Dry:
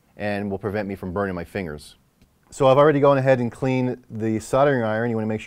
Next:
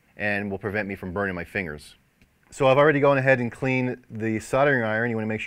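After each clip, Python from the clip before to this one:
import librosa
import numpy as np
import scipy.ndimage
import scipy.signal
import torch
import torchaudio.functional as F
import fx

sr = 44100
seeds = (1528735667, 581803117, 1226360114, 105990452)

y = fx.band_shelf(x, sr, hz=2100.0, db=9.5, octaves=1.0)
y = y * 10.0 ** (-3.0 / 20.0)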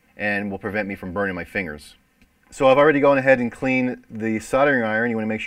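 y = x + 0.52 * np.pad(x, (int(3.9 * sr / 1000.0), 0))[:len(x)]
y = y * 10.0 ** (1.5 / 20.0)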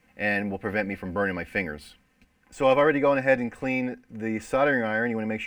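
y = scipy.ndimage.median_filter(x, 3, mode='constant')
y = fx.rider(y, sr, range_db=4, speed_s=2.0)
y = y * 10.0 ** (-6.5 / 20.0)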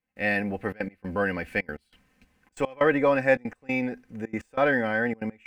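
y = fx.step_gate(x, sr, bpm=187, pattern='..xxxxxxx.x', floor_db=-24.0, edge_ms=4.5)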